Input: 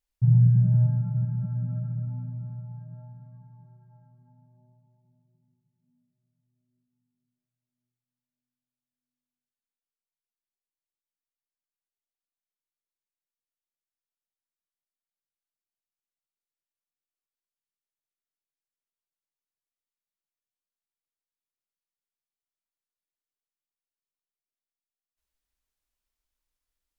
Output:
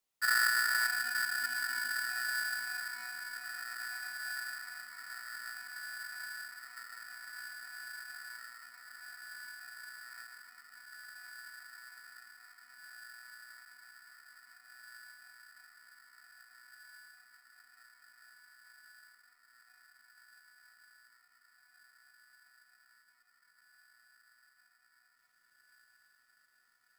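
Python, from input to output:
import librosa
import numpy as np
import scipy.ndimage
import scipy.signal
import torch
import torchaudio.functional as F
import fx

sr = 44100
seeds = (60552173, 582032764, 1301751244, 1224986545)

p1 = fx.diode_clip(x, sr, knee_db=-20.0)
p2 = fx.rider(p1, sr, range_db=3, speed_s=0.5)
p3 = p1 + (p2 * 10.0 ** (1.5 / 20.0))
p4 = scipy.signal.sosfilt(scipy.signal.butter(2, 240.0, 'highpass', fs=sr, output='sos'), p3)
p5 = p4 + fx.echo_diffused(p4, sr, ms=1898, feedback_pct=77, wet_db=-11.5, dry=0)
p6 = fx.dynamic_eq(p5, sr, hz=440.0, q=1.2, threshold_db=-46.0, ratio=4.0, max_db=-6)
p7 = p6 * np.sign(np.sin(2.0 * np.pi * 1600.0 * np.arange(len(p6)) / sr))
y = p7 * 10.0 ** (-3.0 / 20.0)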